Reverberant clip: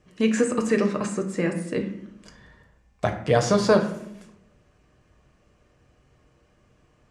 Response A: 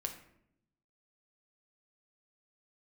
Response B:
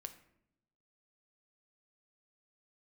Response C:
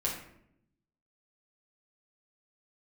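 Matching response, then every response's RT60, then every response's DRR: A; 0.75, 0.75, 0.70 seconds; 3.0, 7.0, −5.5 decibels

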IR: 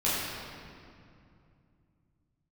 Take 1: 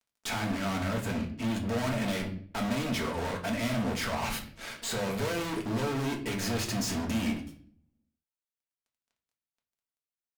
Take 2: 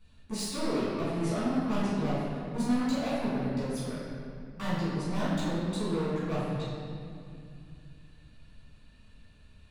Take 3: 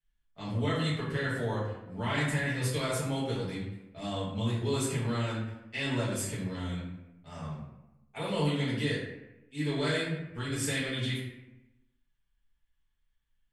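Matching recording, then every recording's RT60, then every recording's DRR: 2; 0.55, 2.5, 0.95 seconds; 0.0, −10.0, −10.0 decibels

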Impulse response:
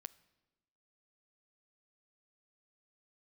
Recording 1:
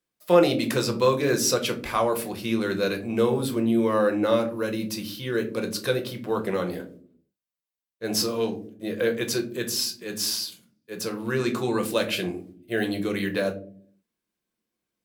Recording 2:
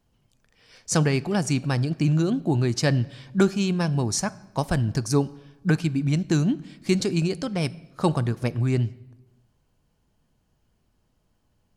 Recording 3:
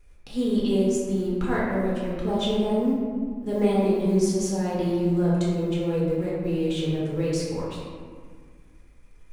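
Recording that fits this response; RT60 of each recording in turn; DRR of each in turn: 2; non-exponential decay, 1.1 s, 1.8 s; 3.5, 16.5, −7.0 decibels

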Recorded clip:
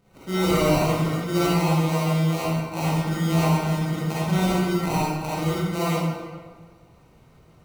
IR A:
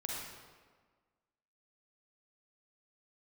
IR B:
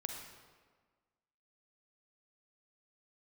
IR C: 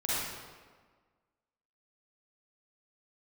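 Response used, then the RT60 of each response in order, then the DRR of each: C; 1.5, 1.5, 1.5 seconds; −3.5, 2.5, −9.5 decibels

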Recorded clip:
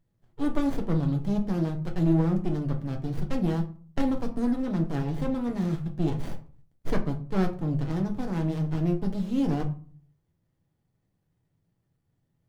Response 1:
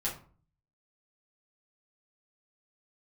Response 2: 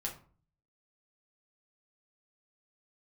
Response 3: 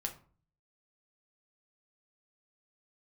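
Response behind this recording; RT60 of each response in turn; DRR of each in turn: 3; 0.45, 0.45, 0.45 seconds; −6.5, −1.5, 2.5 decibels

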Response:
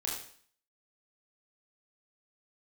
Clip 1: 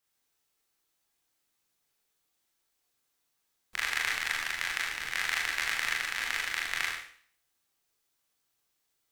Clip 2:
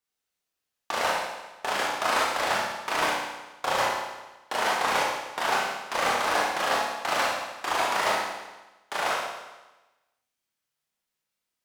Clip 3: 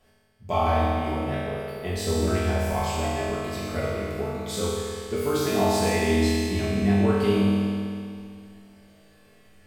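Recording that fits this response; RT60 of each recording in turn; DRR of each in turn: 1; 0.50, 1.1, 2.4 seconds; −3.5, −4.5, −10.0 decibels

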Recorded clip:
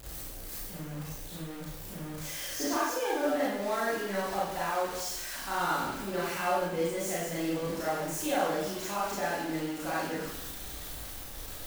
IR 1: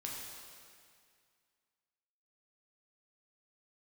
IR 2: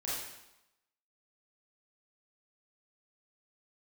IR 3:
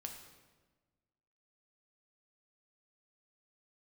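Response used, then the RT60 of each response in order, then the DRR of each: 2; 2.1, 0.90, 1.3 seconds; −3.5, −8.5, 2.5 decibels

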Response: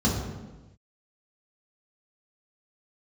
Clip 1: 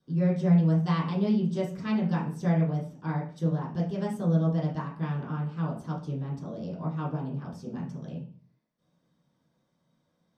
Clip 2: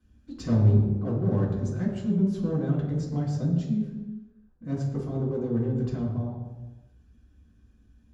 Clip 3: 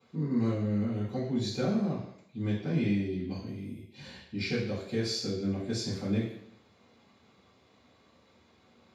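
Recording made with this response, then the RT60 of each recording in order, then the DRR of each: 2; 0.45 s, non-exponential decay, 0.70 s; −8.0, −5.0, −15.5 decibels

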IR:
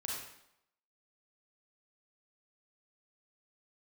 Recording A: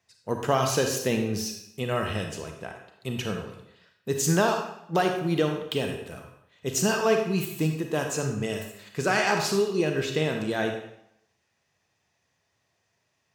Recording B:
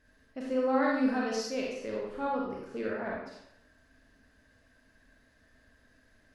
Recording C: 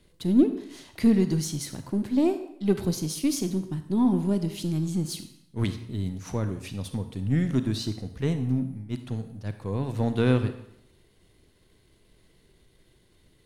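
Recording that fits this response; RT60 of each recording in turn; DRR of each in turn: B; 0.80, 0.80, 0.80 seconds; 3.5, −3.5, 9.0 decibels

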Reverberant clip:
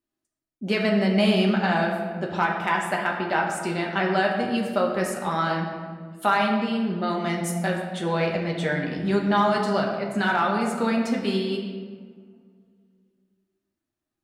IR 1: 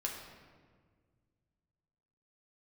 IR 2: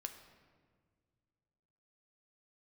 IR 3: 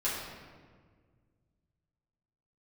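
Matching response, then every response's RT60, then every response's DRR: 1; 1.7, 1.8, 1.7 seconds; −1.5, 5.5, −10.0 decibels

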